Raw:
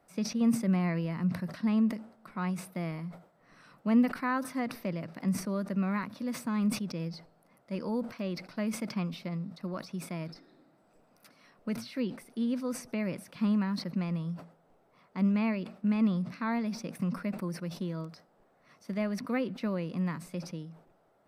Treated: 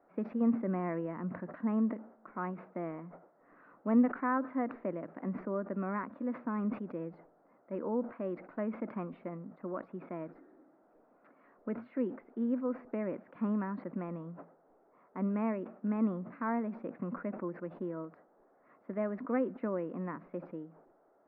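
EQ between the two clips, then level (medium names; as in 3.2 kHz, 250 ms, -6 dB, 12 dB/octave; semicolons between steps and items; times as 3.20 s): low-pass 1.7 kHz 24 dB/octave; distance through air 150 m; resonant low shelf 210 Hz -10.5 dB, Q 1.5; 0.0 dB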